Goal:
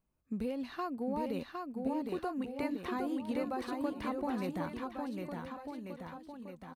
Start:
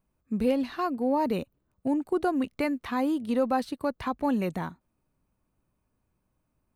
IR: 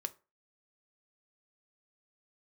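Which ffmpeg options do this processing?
-filter_complex "[0:a]acompressor=threshold=-27dB:ratio=6,asplit=2[a][b];[b]aecho=0:1:760|1444|2060|2614|3112:0.631|0.398|0.251|0.158|0.1[c];[a][c]amix=inputs=2:normalize=0,volume=-6dB"

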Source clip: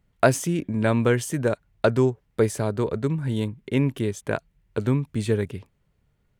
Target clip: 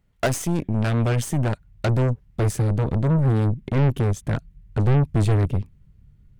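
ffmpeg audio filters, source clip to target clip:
-af "asubboost=boost=8.5:cutoff=200,asoftclip=type=tanh:threshold=-15dB,aeval=exprs='0.178*(cos(1*acos(clip(val(0)/0.178,-1,1)))-cos(1*PI/2))+0.0447*(cos(2*acos(clip(val(0)/0.178,-1,1)))-cos(2*PI/2))+0.0501*(cos(4*acos(clip(val(0)/0.178,-1,1)))-cos(4*PI/2))':c=same"

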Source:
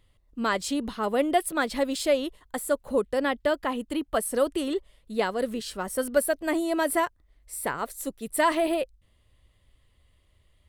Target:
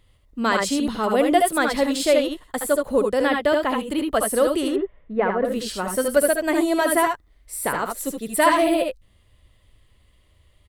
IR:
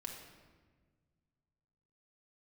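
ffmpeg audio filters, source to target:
-filter_complex "[0:a]asettb=1/sr,asplit=3[a][b][c];[a]atrim=end=4.684[d];[b]atrim=start=4.68:end=5.45,asetpts=PTS-STARTPTS,afade=t=in:d=0.004:c=qsin,afade=t=out:st=0.766:d=0.004:c=qsin,lowpass=f=2k:w=0.5412,lowpass=f=2k:w=1.3066[e];[c]atrim=start=5.446[f];[d][e]acrossfade=d=0.004:c1=hsin:c2=qsin[g];[g][f]acrossfade=d=0.004:c1=qsin:c2=hsin,aecho=1:1:69|79:0.422|0.531,volume=4.5dB"

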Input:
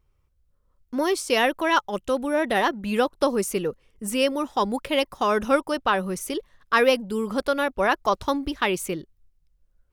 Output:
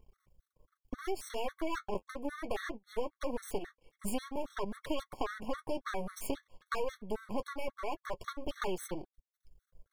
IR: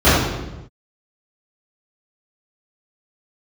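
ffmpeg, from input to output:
-filter_complex "[0:a]asoftclip=type=tanh:threshold=-18dB,equalizer=f=480:t=o:w=1:g=6,bandreject=f=2.5k:w=7.8,aeval=exprs='max(val(0),0)':c=same,asettb=1/sr,asplit=3[a][b][c];[a]atrim=end=1.944[d];[b]atrim=start=1.94:end=3.05,asetpts=PTS-STARTPTS,afade=t=in:d=0.004:c=qsin,afade=t=out:st=1.106:d=0.004:c=qsin,agate=range=-29dB:threshold=-29dB:ratio=16:detection=peak[e];[c]atrim=start=3.046[f];[d][e]acrossfade=d=0.004:c1=hsin:c2=qsin[g];[g][f]acrossfade=d=0.004:c1=qsin:c2=hsin,flanger=delay=4.6:depth=6.5:regen=-40:speed=0.23:shape=triangular,acompressor=threshold=-40dB:ratio=8,afftfilt=real='re*gt(sin(2*PI*3.7*pts/sr)*(1-2*mod(floor(b*sr/1024/1100),2)),0)':imag='im*gt(sin(2*PI*3.7*pts/sr)*(1-2*mod(floor(b*sr/1024/1100),2)),0)':win_size=1024:overlap=0.75,volume=10.5dB"

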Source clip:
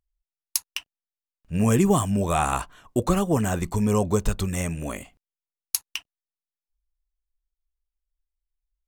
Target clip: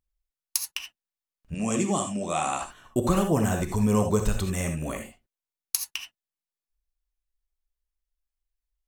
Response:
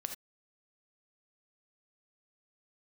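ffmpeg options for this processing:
-filter_complex "[0:a]asettb=1/sr,asplit=3[a][b][c];[a]atrim=end=1.544[d];[b]atrim=start=1.54:end=2.62,asetpts=PTS-STARTPTS,afade=t=in:d=0.004:c=qsin,afade=t=out:st=1.076:d=0.004:c=qsin,highpass=260,equalizer=f=430:t=q:w=4:g=-9,equalizer=f=930:t=q:w=4:g=-6,equalizer=f=1.6k:t=q:w=4:g=-10,equalizer=f=7.4k:t=q:w=4:g=4,lowpass=f=8.6k:w=0.5412,lowpass=f=8.6k:w=1.3066[e];[c]atrim=start=2.616[f];[d][e]acrossfade=d=0.004:c1=hsin:c2=qsin[g];[g][f]acrossfade=d=0.004:c1=qsin:c2=hsin[h];[1:a]atrim=start_sample=2205[i];[h][i]afir=irnorm=-1:irlink=0"

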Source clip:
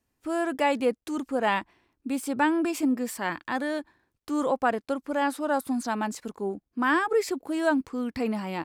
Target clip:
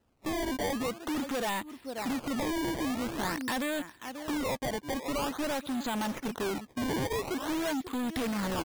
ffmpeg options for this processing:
-filter_complex "[0:a]asplit=2[a][b];[b]acrusher=bits=6:mix=0:aa=0.000001,volume=-5dB[c];[a][c]amix=inputs=2:normalize=0,asplit=2[d][e];[e]adelay=536.4,volume=-21dB,highshelf=f=4k:g=-12.1[f];[d][f]amix=inputs=2:normalize=0,acompressor=threshold=-28dB:ratio=6,aresample=11025,asoftclip=type=hard:threshold=-35.5dB,aresample=44100,lowpass=f=3.7k:t=q:w=3.5,acrossover=split=2900[g][h];[h]acompressor=threshold=-48dB:ratio=4:attack=1:release=60[i];[g][i]amix=inputs=2:normalize=0,acrusher=samples=19:mix=1:aa=0.000001:lfo=1:lforange=30.4:lforate=0.47,volume=5.5dB"

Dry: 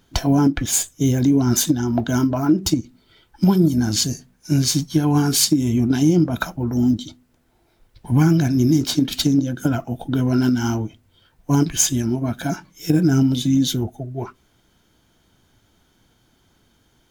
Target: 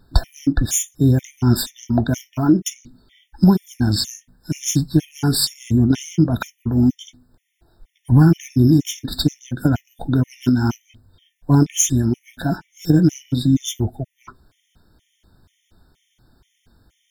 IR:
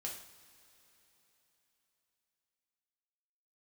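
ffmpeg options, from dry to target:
-af "lowshelf=f=100:g=11.5,afftfilt=real='re*gt(sin(2*PI*2.1*pts/sr)*(1-2*mod(floor(b*sr/1024/1800),2)),0)':imag='im*gt(sin(2*PI*2.1*pts/sr)*(1-2*mod(floor(b*sr/1024/1800),2)),0)':win_size=1024:overlap=0.75,volume=1dB"

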